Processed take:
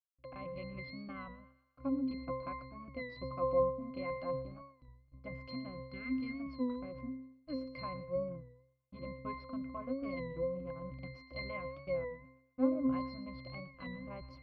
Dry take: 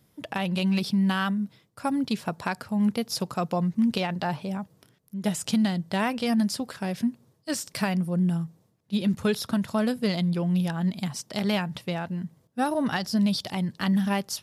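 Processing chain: spectral selection erased 5.75–6.38 s, 480–1200 Hz; low-pass that closes with the level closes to 2.5 kHz, closed at -20 dBFS; RIAA curve recording; hysteresis with a dead band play -30 dBFS; distance through air 360 m; pitch-class resonator C, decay 0.69 s; thinning echo 120 ms, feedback 51%, high-pass 520 Hz, level -16.5 dB; warped record 33 1/3 rpm, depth 100 cents; trim +16 dB

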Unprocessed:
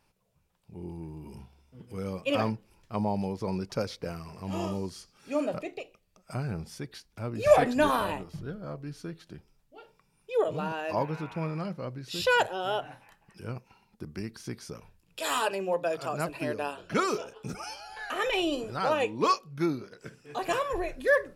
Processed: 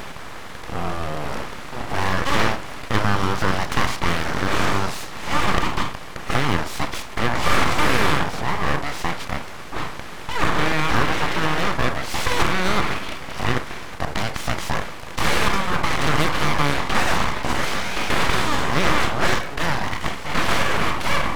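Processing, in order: spectral levelling over time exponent 0.2; spectral noise reduction 8 dB; full-wave rectifier; trim -1 dB

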